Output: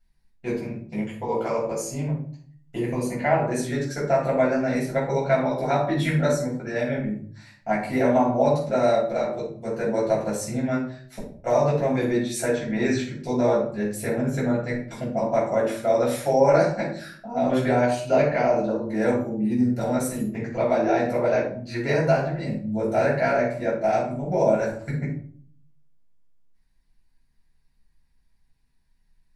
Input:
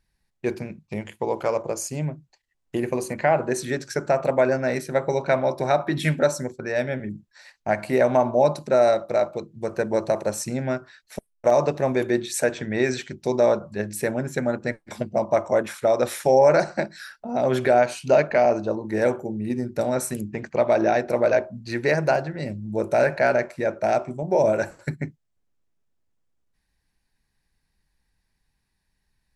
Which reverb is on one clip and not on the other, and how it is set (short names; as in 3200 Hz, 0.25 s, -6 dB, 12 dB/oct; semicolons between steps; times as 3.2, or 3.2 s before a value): shoebox room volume 450 m³, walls furnished, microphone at 7.1 m; gain -11 dB